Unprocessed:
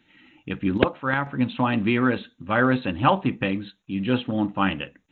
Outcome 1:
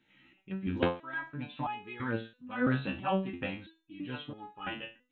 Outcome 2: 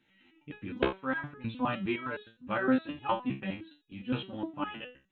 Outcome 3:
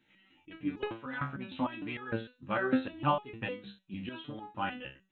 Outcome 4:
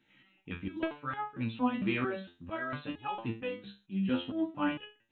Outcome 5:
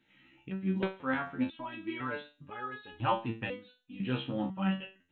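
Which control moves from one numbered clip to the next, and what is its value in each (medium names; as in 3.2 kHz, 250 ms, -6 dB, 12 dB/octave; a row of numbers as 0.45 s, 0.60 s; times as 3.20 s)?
resonator arpeggio, rate: 3 Hz, 9.7 Hz, 6.6 Hz, 4.4 Hz, 2 Hz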